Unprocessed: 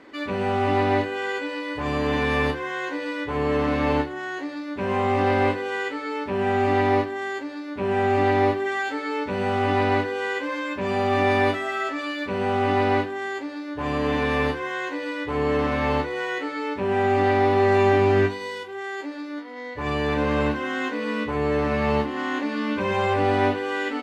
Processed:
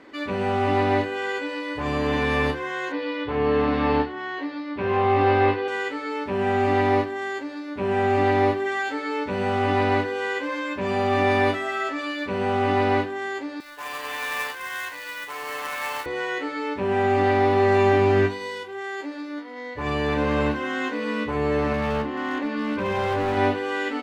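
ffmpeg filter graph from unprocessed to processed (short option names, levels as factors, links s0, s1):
-filter_complex "[0:a]asettb=1/sr,asplit=3[s0][s1][s2];[s0]atrim=end=2.924[s3];[s1]atrim=start=2.92:end=5.68,asetpts=PTS-STARTPTS,afade=t=in:d=0.004:c=qsin,afade=t=out:st=2.756:d=0.004:c=qsin,lowpass=f=4600:w=0.5412,lowpass=f=4600:w=1.3066,asplit=2[s4][s5];[s5]adelay=18,volume=0.531[s6];[s4][s6]amix=inputs=2:normalize=0,atrim=end_sample=121716[s7];[s2]atrim=start=5.676[s8];[s3][s7]acrossfade=d=0.004:c1=hsin:c2=qsin[s9];[s9][s8]acrossfade=d=0.004:c1=qsin:c2=hsin,asettb=1/sr,asplit=3[s10][s11][s12];[s10]atrim=end=13.604[s13];[s11]atrim=start=13.6:end=16.06,asetpts=PTS-STARTPTS,afade=t=in:d=0.004:c=qsin,afade=t=out:st=2.456:d=0.004:c=qsin,highpass=1100,acrusher=bits=2:mode=log:mix=0:aa=0.000001[s14];[s12]atrim=start=16.056[s15];[s13][s14]acrossfade=d=0.004:c1=hsin:c2=qsin[s16];[s16][s15]acrossfade=d=0.004:c1=qsin:c2=hsin,asettb=1/sr,asplit=3[s17][s18][s19];[s17]atrim=end=21.734[s20];[s18]atrim=start=21.73:end=23.37,asetpts=PTS-STARTPTS,afade=t=in:d=0.004:c=qsin,afade=t=out:st=1.636:d=0.004:c=qsin,lowpass=f=3100:p=1,volume=10.6,asoftclip=hard,volume=0.0944[s21];[s19]atrim=start=23.366[s22];[s20][s21]acrossfade=d=0.004:c1=hsin:c2=qsin[s23];[s23][s22]acrossfade=d=0.004:c1=qsin:c2=hsin"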